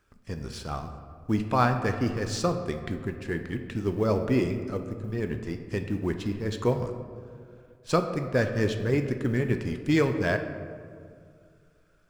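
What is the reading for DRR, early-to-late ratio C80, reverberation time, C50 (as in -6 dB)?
6.0 dB, 9.5 dB, 2.2 s, 8.0 dB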